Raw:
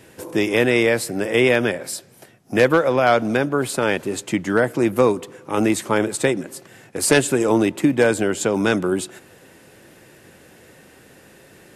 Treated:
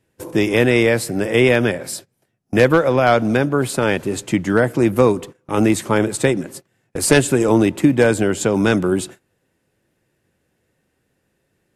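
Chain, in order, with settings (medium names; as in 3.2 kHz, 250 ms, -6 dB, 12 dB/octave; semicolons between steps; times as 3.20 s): gate -35 dBFS, range -23 dB; bass shelf 150 Hz +10 dB; trim +1 dB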